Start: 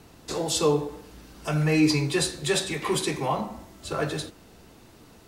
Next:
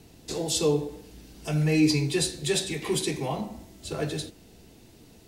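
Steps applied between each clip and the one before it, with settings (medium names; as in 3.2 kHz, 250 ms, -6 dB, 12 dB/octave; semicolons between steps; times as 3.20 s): peaking EQ 1.2 kHz -11.5 dB 1.1 oct; band-stop 560 Hz, Q 14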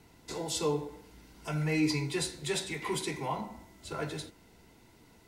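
small resonant body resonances 990/1400/2000 Hz, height 13 dB, ringing for 20 ms; trim -7.5 dB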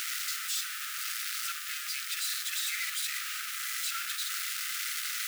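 one-bit comparator; in parallel at -5.5 dB: word length cut 6-bit, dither triangular; on the sum: brick-wall FIR high-pass 1.2 kHz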